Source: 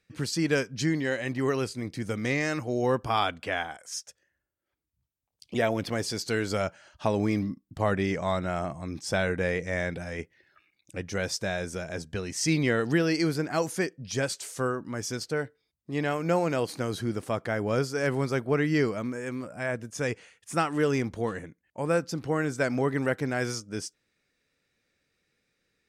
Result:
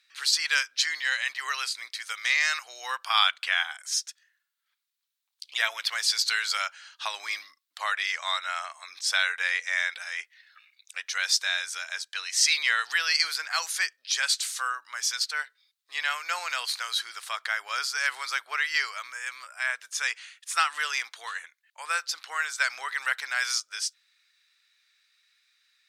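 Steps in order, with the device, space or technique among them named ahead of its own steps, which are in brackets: headphones lying on a table (high-pass 1.2 kHz 24 dB/octave; peaking EQ 3.9 kHz +8.5 dB 0.59 oct); trim +6.5 dB

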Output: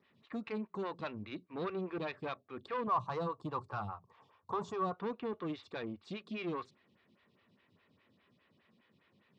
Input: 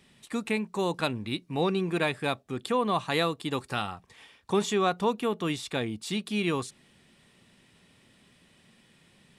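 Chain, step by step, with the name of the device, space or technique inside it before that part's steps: vibe pedal into a guitar amplifier (lamp-driven phase shifter 4.9 Hz; valve stage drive 27 dB, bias 0.4; cabinet simulation 89–4300 Hz, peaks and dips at 94 Hz +9 dB, 790 Hz -4 dB, 1.1 kHz +4 dB, 3.2 kHz -3 dB); 2.87–4.98 s: graphic EQ 125/250/1000/2000/4000/8000 Hz +11/-4/+9/-11/-5/+6 dB; trim -4.5 dB

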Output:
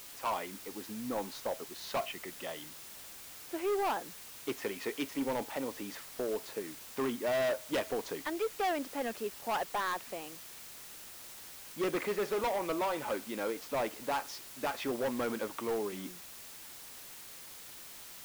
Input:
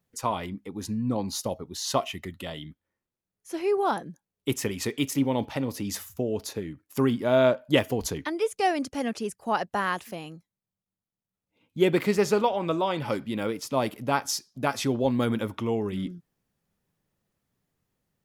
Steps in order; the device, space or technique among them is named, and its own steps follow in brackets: aircraft radio (band-pass 390–2500 Hz; hard clipper -26.5 dBFS, distortion -7 dB; white noise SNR 12 dB); trim -2 dB

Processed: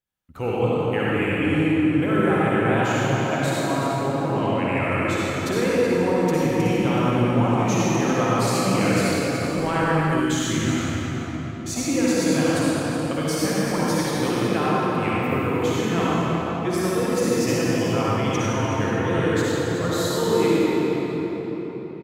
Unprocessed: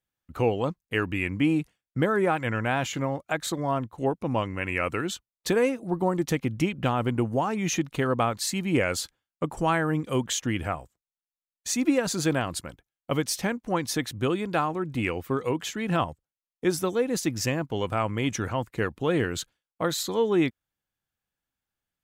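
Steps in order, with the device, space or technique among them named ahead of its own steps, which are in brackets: cave (delay 374 ms -11 dB; reverberation RT60 4.6 s, pre-delay 48 ms, DRR -8.5 dB); 10.20–11.76 s: high-order bell 700 Hz -8 dB; trim -4 dB

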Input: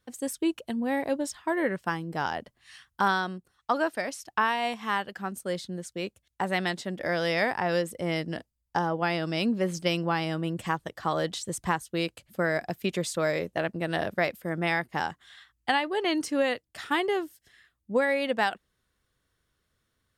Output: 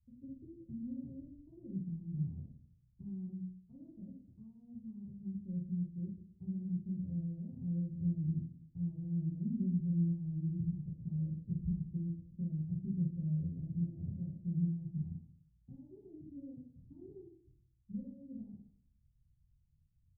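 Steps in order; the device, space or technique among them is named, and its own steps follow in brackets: club heard from the street (peak limiter -20 dBFS, peak gain reduction 8 dB; low-pass 150 Hz 24 dB/octave; reverberation RT60 0.65 s, pre-delay 5 ms, DRR -5 dB)

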